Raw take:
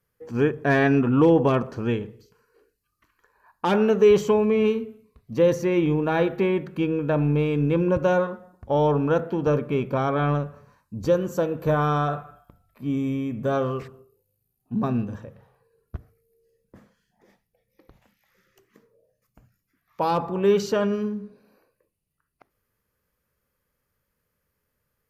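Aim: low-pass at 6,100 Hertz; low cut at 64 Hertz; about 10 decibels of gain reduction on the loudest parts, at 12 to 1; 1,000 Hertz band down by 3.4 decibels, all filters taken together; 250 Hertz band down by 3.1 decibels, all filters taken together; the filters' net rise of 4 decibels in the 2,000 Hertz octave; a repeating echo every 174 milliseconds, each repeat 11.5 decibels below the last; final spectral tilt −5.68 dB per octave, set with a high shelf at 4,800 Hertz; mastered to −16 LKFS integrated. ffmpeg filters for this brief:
ffmpeg -i in.wav -af "highpass=64,lowpass=6100,equalizer=frequency=250:width_type=o:gain=-4,equalizer=frequency=1000:width_type=o:gain=-6.5,equalizer=frequency=2000:width_type=o:gain=7,highshelf=frequency=4800:gain=5.5,acompressor=threshold=-23dB:ratio=12,aecho=1:1:174|348|522:0.266|0.0718|0.0194,volume=13dB" out.wav

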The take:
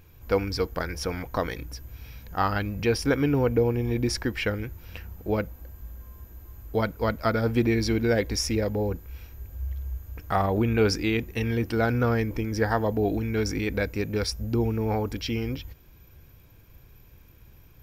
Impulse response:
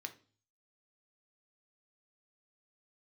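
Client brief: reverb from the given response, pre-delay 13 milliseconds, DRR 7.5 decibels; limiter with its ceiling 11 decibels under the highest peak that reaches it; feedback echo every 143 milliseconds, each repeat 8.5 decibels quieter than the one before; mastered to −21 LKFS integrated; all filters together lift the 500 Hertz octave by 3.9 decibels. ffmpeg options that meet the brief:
-filter_complex "[0:a]equalizer=frequency=500:width_type=o:gain=4.5,alimiter=limit=-18.5dB:level=0:latency=1,aecho=1:1:143|286|429|572:0.376|0.143|0.0543|0.0206,asplit=2[link_01][link_02];[1:a]atrim=start_sample=2205,adelay=13[link_03];[link_02][link_03]afir=irnorm=-1:irlink=0,volume=-5dB[link_04];[link_01][link_04]amix=inputs=2:normalize=0,volume=6.5dB"

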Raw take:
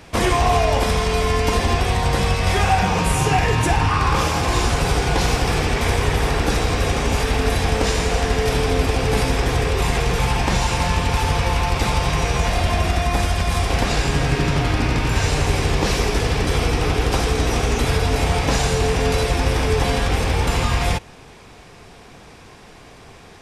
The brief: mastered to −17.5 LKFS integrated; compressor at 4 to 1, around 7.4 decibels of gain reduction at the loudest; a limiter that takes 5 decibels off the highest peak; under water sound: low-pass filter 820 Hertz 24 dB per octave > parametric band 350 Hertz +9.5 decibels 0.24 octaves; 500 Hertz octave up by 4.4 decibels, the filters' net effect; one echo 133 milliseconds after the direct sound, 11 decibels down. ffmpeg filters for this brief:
ffmpeg -i in.wav -af "equalizer=frequency=500:width_type=o:gain=3.5,acompressor=threshold=-22dB:ratio=4,alimiter=limit=-17dB:level=0:latency=1,lowpass=frequency=820:width=0.5412,lowpass=frequency=820:width=1.3066,equalizer=frequency=350:width_type=o:width=0.24:gain=9.5,aecho=1:1:133:0.282,volume=9.5dB" out.wav

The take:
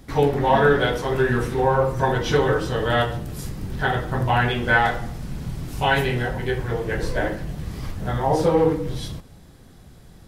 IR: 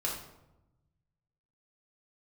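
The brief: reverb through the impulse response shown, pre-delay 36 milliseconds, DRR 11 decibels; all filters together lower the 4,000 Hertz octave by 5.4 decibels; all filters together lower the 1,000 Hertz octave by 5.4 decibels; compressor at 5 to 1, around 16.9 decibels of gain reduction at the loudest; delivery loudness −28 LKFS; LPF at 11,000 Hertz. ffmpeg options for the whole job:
-filter_complex "[0:a]lowpass=11000,equalizer=frequency=1000:width_type=o:gain=-7,equalizer=frequency=4000:width_type=o:gain=-7,acompressor=threshold=-35dB:ratio=5,asplit=2[link_01][link_02];[1:a]atrim=start_sample=2205,adelay=36[link_03];[link_02][link_03]afir=irnorm=-1:irlink=0,volume=-15.5dB[link_04];[link_01][link_04]amix=inputs=2:normalize=0,volume=9.5dB"

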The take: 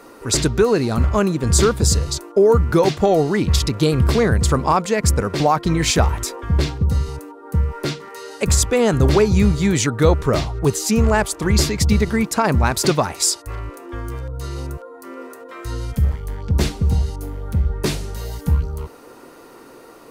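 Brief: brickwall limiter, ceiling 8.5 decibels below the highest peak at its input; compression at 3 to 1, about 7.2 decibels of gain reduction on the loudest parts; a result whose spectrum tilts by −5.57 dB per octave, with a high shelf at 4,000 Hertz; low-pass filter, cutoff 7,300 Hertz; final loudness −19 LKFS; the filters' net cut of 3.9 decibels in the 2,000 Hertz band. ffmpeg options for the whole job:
ffmpeg -i in.wav -af "lowpass=7300,equalizer=frequency=2000:width_type=o:gain=-4.5,highshelf=frequency=4000:gain=-3,acompressor=threshold=-20dB:ratio=3,volume=9dB,alimiter=limit=-9.5dB:level=0:latency=1" out.wav

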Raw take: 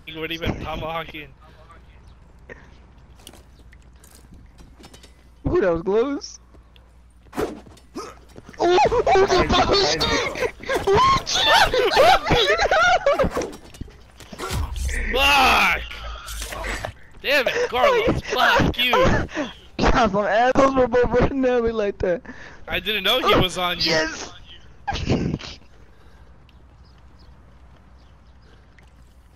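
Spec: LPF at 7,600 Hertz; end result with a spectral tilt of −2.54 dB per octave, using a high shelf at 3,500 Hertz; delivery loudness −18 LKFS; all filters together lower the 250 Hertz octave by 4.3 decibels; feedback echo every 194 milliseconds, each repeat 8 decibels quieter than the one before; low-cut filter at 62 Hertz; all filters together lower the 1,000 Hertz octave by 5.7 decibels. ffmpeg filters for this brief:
ffmpeg -i in.wav -af "highpass=62,lowpass=7600,equalizer=frequency=250:width_type=o:gain=-5.5,equalizer=frequency=1000:width_type=o:gain=-7,highshelf=frequency=3500:gain=-6.5,aecho=1:1:194|388|582|776|970:0.398|0.159|0.0637|0.0255|0.0102,volume=4.5dB" out.wav

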